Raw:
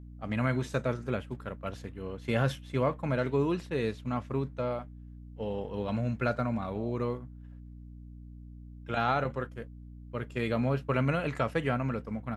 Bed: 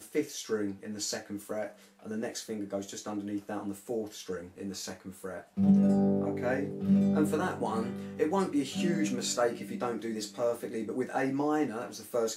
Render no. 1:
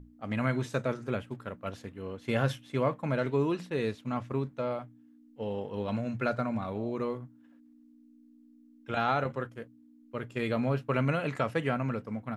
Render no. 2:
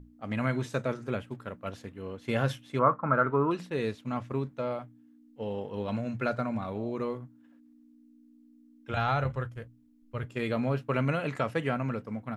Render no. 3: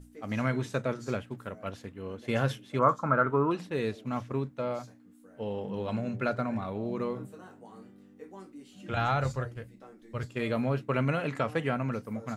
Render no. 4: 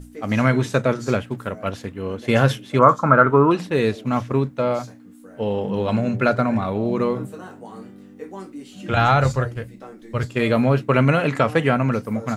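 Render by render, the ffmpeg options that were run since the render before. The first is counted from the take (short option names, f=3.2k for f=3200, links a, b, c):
-af "bandreject=f=60:t=h:w=6,bandreject=f=120:t=h:w=6,bandreject=f=180:t=h:w=6"
-filter_complex "[0:a]asettb=1/sr,asplit=3[a][b][c];[a]atrim=end=2.794[d];[b]atrim=start=2.79:end=3.51,asetpts=PTS-STARTPTS,afade=t=in:d=0.004:c=qsin,afade=t=out:st=0.716:d=0.004:c=qsin,lowpass=f=1.3k:t=q:w=8.3[e];[c]atrim=start=3.506[f];[d][e]acrossfade=d=0.004:c1=hsin:c2=qsin[g];[g][f]acrossfade=d=0.004:c1=qsin:c2=hsin,asplit=3[h][i][j];[h]afade=t=out:st=8.92:d=0.02[k];[i]asubboost=boost=10.5:cutoff=80,afade=t=in:st=8.92:d=0.02,afade=t=out:st=10.24:d=0.02[l];[j]afade=t=in:st=10.24:d=0.02[m];[k][l][m]amix=inputs=3:normalize=0"
-filter_complex "[1:a]volume=-18.5dB[a];[0:a][a]amix=inputs=2:normalize=0"
-af "volume=11.5dB,alimiter=limit=-1dB:level=0:latency=1"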